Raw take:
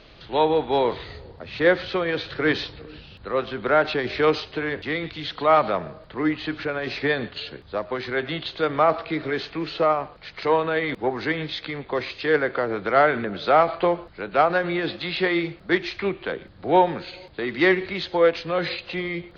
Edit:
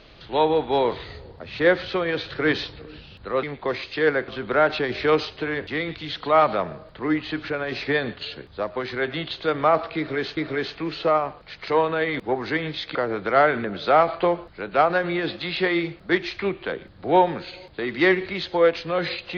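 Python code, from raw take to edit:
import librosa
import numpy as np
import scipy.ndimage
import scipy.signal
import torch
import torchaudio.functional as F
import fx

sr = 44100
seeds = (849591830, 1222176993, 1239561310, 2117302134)

y = fx.edit(x, sr, fx.repeat(start_s=9.12, length_s=0.4, count=2),
    fx.move(start_s=11.7, length_s=0.85, to_s=3.43), tone=tone)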